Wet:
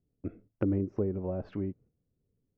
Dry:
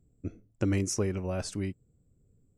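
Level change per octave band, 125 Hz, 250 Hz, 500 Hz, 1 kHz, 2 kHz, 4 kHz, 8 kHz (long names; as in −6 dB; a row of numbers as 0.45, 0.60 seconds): −3.0 dB, 0.0 dB, 0.0 dB, −4.5 dB, −12.5 dB, below −20 dB, below −40 dB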